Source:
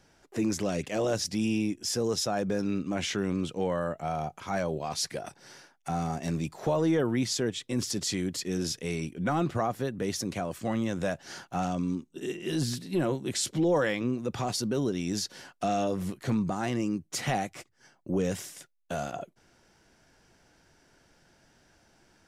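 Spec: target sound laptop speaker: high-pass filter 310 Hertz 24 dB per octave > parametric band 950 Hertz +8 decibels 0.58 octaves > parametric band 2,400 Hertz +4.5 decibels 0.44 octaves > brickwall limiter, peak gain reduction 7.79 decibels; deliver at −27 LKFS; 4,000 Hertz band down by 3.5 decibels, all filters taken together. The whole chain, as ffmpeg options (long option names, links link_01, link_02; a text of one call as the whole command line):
ffmpeg -i in.wav -af "highpass=frequency=310:width=0.5412,highpass=frequency=310:width=1.3066,equalizer=frequency=950:width_type=o:width=0.58:gain=8,equalizer=frequency=2400:width_type=o:width=0.44:gain=4.5,equalizer=frequency=4000:width_type=o:gain=-5.5,volume=6.5dB,alimiter=limit=-15dB:level=0:latency=1" out.wav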